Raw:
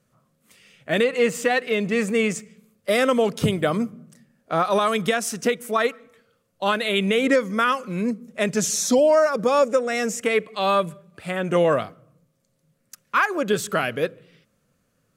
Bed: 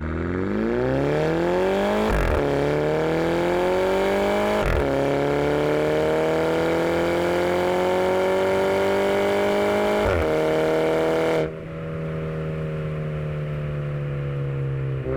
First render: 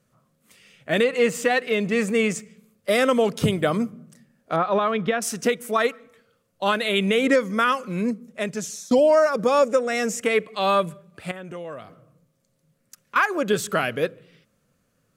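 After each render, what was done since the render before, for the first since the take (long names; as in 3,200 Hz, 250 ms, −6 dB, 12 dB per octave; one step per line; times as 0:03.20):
0:04.56–0:05.22: high-frequency loss of the air 300 metres
0:08.06–0:08.91: fade out, to −20 dB
0:11.31–0:13.16: downward compressor 2.5 to 1, threshold −40 dBFS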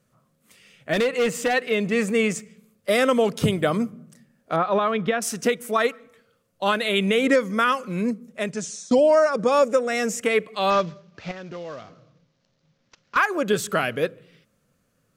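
0:00.93–0:01.54: gain into a clipping stage and back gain 17 dB
0:08.52–0:09.52: Chebyshev low-pass filter 9,200 Hz, order 5
0:10.70–0:13.17: variable-slope delta modulation 32 kbit/s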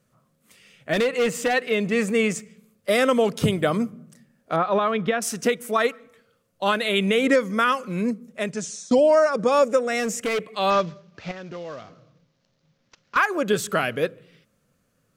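0:10.00–0:10.51: hard clipping −21 dBFS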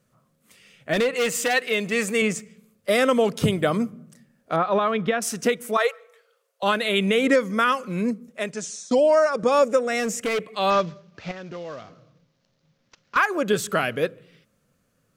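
0:01.16–0:02.22: spectral tilt +2 dB per octave
0:05.77–0:06.63: Butterworth high-pass 400 Hz 96 dB per octave
0:08.29–0:09.43: low-shelf EQ 160 Hz −11.5 dB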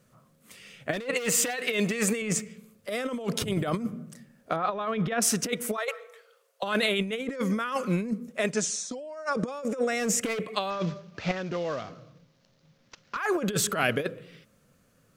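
brickwall limiter −14 dBFS, peak gain reduction 5.5 dB
compressor whose output falls as the input rises −27 dBFS, ratio −0.5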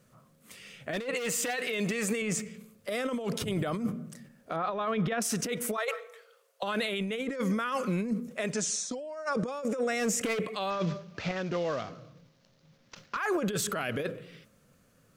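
brickwall limiter −21.5 dBFS, peak gain reduction 11 dB
level that may fall only so fast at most 130 dB per second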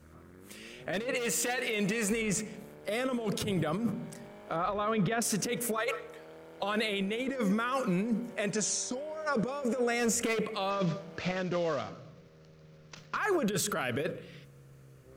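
mix in bed −29.5 dB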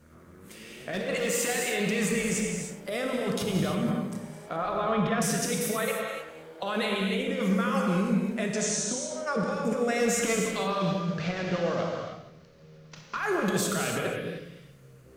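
delay that plays each chunk backwards 109 ms, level −11 dB
reverb whose tail is shaped and stops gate 340 ms flat, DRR 0.5 dB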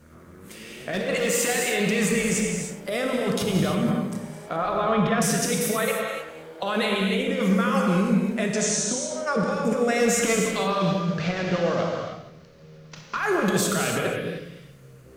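level +4.5 dB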